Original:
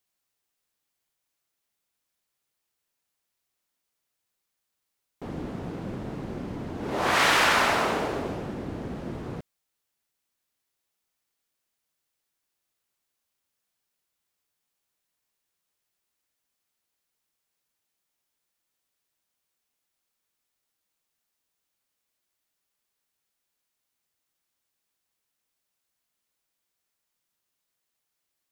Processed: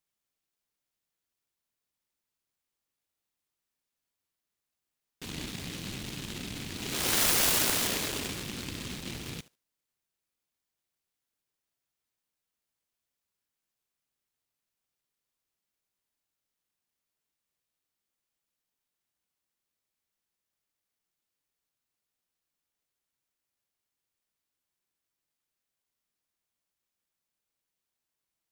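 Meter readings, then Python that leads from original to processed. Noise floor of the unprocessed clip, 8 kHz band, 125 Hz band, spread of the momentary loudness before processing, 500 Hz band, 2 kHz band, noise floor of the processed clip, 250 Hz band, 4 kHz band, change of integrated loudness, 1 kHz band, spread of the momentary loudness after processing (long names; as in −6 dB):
−82 dBFS, +7.5 dB, −4.5 dB, 17 LU, −9.5 dB, −9.0 dB, below −85 dBFS, −6.0 dB, −0.5 dB, −2.5 dB, −13.5 dB, 17 LU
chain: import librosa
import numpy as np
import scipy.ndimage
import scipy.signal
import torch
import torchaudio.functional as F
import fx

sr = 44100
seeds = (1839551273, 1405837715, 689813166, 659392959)

y = fx.echo_thinned(x, sr, ms=73, feedback_pct=24, hz=670.0, wet_db=-12.5)
y = fx.noise_mod_delay(y, sr, seeds[0], noise_hz=3000.0, depth_ms=0.45)
y = y * 10.0 ** (-4.5 / 20.0)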